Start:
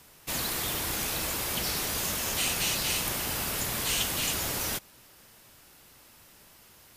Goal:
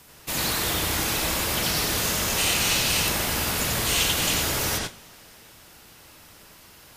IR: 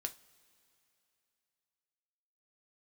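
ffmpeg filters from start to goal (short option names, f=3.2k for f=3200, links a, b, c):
-filter_complex "[0:a]asplit=2[a][b];[1:a]atrim=start_sample=2205,lowpass=7k,adelay=89[c];[b][c]afir=irnorm=-1:irlink=0,volume=2.5dB[d];[a][d]amix=inputs=2:normalize=0,volume=3.5dB"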